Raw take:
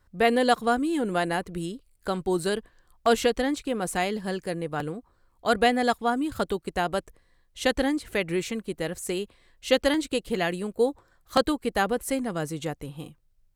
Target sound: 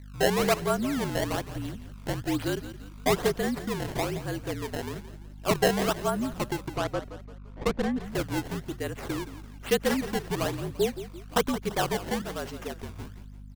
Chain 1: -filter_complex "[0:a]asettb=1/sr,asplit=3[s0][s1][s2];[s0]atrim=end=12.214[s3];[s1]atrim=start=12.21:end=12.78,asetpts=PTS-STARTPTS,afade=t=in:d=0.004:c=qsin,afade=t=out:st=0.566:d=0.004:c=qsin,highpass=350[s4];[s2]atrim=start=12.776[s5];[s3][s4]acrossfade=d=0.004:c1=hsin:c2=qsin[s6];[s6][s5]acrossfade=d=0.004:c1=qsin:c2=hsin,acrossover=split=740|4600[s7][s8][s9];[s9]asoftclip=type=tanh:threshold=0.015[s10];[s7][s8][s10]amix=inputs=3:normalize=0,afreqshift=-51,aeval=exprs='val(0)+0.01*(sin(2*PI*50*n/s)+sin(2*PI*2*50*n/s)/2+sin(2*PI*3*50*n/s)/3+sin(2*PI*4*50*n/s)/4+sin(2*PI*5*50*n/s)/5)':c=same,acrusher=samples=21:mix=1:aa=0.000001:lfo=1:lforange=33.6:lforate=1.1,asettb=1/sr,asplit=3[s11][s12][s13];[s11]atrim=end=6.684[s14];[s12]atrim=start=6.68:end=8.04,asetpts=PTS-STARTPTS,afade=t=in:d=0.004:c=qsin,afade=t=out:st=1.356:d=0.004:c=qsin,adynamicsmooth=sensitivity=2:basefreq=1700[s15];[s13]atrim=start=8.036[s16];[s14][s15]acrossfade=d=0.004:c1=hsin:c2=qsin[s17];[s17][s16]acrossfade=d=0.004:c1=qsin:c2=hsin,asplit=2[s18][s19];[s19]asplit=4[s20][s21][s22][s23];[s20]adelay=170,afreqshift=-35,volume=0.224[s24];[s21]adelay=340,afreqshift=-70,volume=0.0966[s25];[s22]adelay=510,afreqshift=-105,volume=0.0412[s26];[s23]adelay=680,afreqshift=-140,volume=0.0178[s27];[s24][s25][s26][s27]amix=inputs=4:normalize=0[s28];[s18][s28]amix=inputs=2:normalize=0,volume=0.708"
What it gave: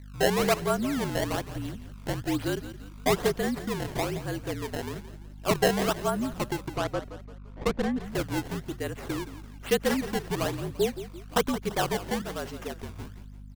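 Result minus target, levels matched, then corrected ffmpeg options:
saturation: distortion +14 dB
-filter_complex "[0:a]asettb=1/sr,asplit=3[s0][s1][s2];[s0]atrim=end=12.214[s3];[s1]atrim=start=12.21:end=12.78,asetpts=PTS-STARTPTS,afade=t=in:d=0.004:c=qsin,afade=t=out:st=0.566:d=0.004:c=qsin,highpass=350[s4];[s2]atrim=start=12.776[s5];[s3][s4]acrossfade=d=0.004:c1=hsin:c2=qsin[s6];[s6][s5]acrossfade=d=0.004:c1=qsin:c2=hsin,acrossover=split=740|4600[s7][s8][s9];[s9]asoftclip=type=tanh:threshold=0.0562[s10];[s7][s8][s10]amix=inputs=3:normalize=0,afreqshift=-51,aeval=exprs='val(0)+0.01*(sin(2*PI*50*n/s)+sin(2*PI*2*50*n/s)/2+sin(2*PI*3*50*n/s)/3+sin(2*PI*4*50*n/s)/4+sin(2*PI*5*50*n/s)/5)':c=same,acrusher=samples=21:mix=1:aa=0.000001:lfo=1:lforange=33.6:lforate=1.1,asettb=1/sr,asplit=3[s11][s12][s13];[s11]atrim=end=6.684[s14];[s12]atrim=start=6.68:end=8.04,asetpts=PTS-STARTPTS,afade=t=in:d=0.004:c=qsin,afade=t=out:st=1.356:d=0.004:c=qsin,adynamicsmooth=sensitivity=2:basefreq=1700[s15];[s13]atrim=start=8.036[s16];[s14][s15]acrossfade=d=0.004:c1=hsin:c2=qsin[s17];[s17][s16]acrossfade=d=0.004:c1=qsin:c2=hsin,asplit=2[s18][s19];[s19]asplit=4[s20][s21][s22][s23];[s20]adelay=170,afreqshift=-35,volume=0.224[s24];[s21]adelay=340,afreqshift=-70,volume=0.0966[s25];[s22]adelay=510,afreqshift=-105,volume=0.0412[s26];[s23]adelay=680,afreqshift=-140,volume=0.0178[s27];[s24][s25][s26][s27]amix=inputs=4:normalize=0[s28];[s18][s28]amix=inputs=2:normalize=0,volume=0.708"

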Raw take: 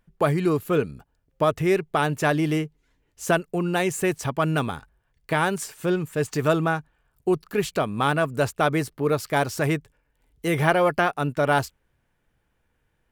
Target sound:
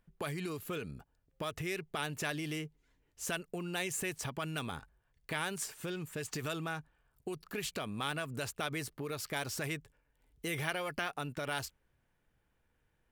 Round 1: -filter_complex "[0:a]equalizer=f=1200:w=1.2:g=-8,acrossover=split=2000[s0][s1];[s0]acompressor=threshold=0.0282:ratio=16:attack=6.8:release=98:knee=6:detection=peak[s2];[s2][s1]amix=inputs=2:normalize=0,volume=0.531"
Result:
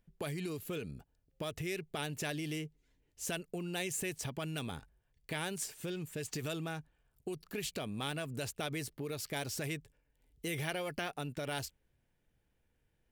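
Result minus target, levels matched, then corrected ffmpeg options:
1 kHz band -2.5 dB
-filter_complex "[0:a]acrossover=split=2000[s0][s1];[s0]acompressor=threshold=0.0282:ratio=16:attack=6.8:release=98:knee=6:detection=peak[s2];[s2][s1]amix=inputs=2:normalize=0,volume=0.531"

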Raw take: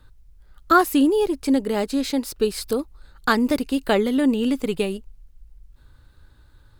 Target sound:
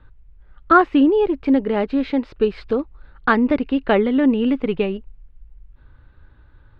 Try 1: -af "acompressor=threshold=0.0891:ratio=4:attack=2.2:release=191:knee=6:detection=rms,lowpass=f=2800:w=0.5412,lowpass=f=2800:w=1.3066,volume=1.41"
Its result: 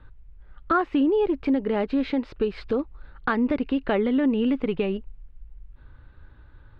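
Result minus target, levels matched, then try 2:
compression: peak gain reduction +10.5 dB
-af "lowpass=f=2800:w=0.5412,lowpass=f=2800:w=1.3066,volume=1.41"

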